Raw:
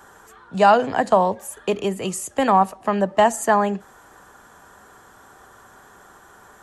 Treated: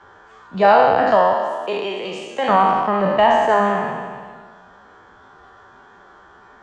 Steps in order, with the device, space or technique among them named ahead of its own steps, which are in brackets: spectral trails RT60 1.77 s; 1.33–2.49 Bessel high-pass 430 Hz, order 2; clip after many re-uploads (LPF 4500 Hz 24 dB/oct; bin magnitudes rounded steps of 15 dB); gain -1 dB

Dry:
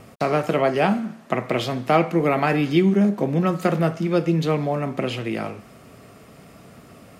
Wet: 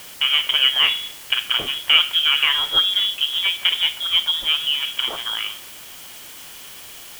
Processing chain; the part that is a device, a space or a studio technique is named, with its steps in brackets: scrambled radio voice (BPF 330–3000 Hz; inverted band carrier 3600 Hz; white noise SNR 18 dB); gain +3.5 dB

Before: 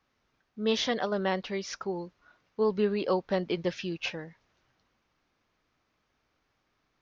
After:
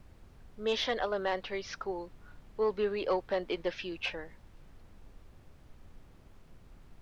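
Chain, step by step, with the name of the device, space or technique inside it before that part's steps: aircraft cabin announcement (BPF 380–4100 Hz; soft clip -19 dBFS, distortion -21 dB; brown noise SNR 15 dB)

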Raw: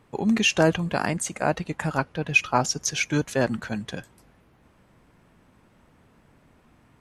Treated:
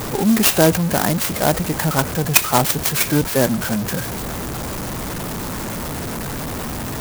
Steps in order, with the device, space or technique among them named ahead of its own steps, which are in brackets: early CD player with a faulty converter (zero-crossing step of -25 dBFS; clock jitter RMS 0.091 ms); gain +4.5 dB

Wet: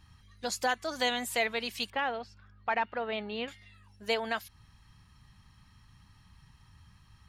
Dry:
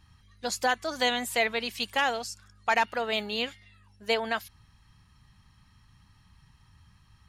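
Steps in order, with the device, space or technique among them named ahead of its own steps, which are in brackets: 1.9–3.48 air absorption 350 m; parallel compression (in parallel at -2 dB: compressor, threshold -39 dBFS, peak gain reduction 17.5 dB); on the sum: gain -4.5 dB

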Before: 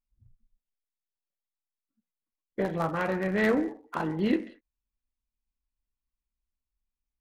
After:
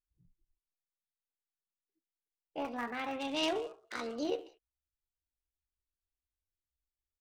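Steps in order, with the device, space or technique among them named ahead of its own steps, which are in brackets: 3.2–4.25 band shelf 3800 Hz +11 dB; chipmunk voice (pitch shift +6.5 st); gain -9 dB

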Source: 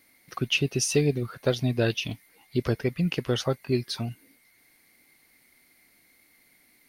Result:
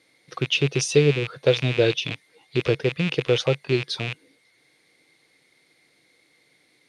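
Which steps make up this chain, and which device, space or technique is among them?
car door speaker with a rattle (rattling part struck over -39 dBFS, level -19 dBFS; speaker cabinet 100–8700 Hz, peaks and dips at 140 Hz +7 dB, 230 Hz -7 dB, 330 Hz +4 dB, 480 Hz +10 dB, 3600 Hz +8 dB)

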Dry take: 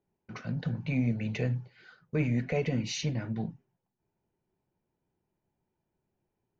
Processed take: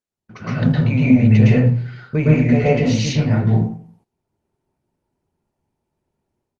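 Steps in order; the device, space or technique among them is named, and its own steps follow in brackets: 1.17–2.2 bell 120 Hz +5 dB 2.1 oct; speakerphone in a meeting room (reverb RT60 0.50 s, pre-delay 0.108 s, DRR -7 dB; speakerphone echo 80 ms, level -21 dB; AGC gain up to 16.5 dB; gate -52 dBFS, range -15 dB; gain -1 dB; Opus 32 kbps 48000 Hz)

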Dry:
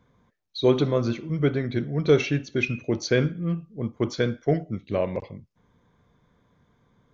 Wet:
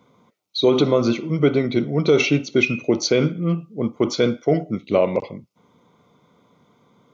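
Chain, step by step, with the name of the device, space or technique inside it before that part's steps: PA system with an anti-feedback notch (HPF 190 Hz 12 dB/oct; Butterworth band-stop 1700 Hz, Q 3.6; limiter -15.5 dBFS, peak gain reduction 8 dB); gain +9 dB

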